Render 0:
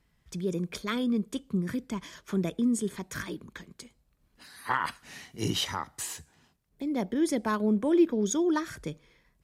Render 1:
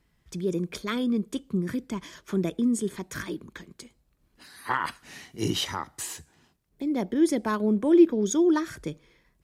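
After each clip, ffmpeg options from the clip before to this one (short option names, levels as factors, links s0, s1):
-af "equalizer=f=340:w=3.1:g=4.5,volume=1.12"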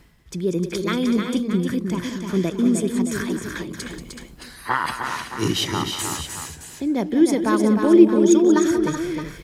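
-af "areverse,acompressor=mode=upward:threshold=0.0316:ratio=2.5,areverse,aecho=1:1:184|306|376|620:0.266|0.501|0.299|0.266,volume=1.78"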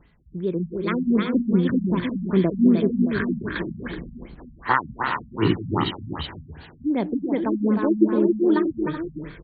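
-af "dynaudnorm=f=110:g=21:m=2.51,afftfilt=real='re*lt(b*sr/1024,230*pow(4700/230,0.5+0.5*sin(2*PI*2.6*pts/sr)))':imag='im*lt(b*sr/1024,230*pow(4700/230,0.5+0.5*sin(2*PI*2.6*pts/sr)))':win_size=1024:overlap=0.75,volume=0.708"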